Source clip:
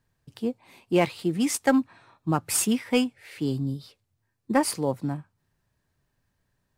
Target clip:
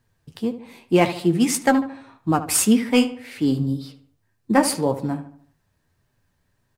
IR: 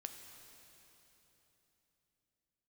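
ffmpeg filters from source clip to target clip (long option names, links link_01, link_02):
-filter_complex "[0:a]flanger=delay=7.9:depth=5.4:regen=48:speed=1.8:shape=triangular,asplit=2[link_01][link_02];[link_02]adelay=74,lowpass=frequency=2400:poles=1,volume=-12dB,asplit=2[link_03][link_04];[link_04]adelay=74,lowpass=frequency=2400:poles=1,volume=0.46,asplit=2[link_05][link_06];[link_06]adelay=74,lowpass=frequency=2400:poles=1,volume=0.46,asplit=2[link_07][link_08];[link_08]adelay=74,lowpass=frequency=2400:poles=1,volume=0.46,asplit=2[link_09][link_10];[link_10]adelay=74,lowpass=frequency=2400:poles=1,volume=0.46[link_11];[link_01][link_03][link_05][link_07][link_09][link_11]amix=inputs=6:normalize=0,volume=9dB"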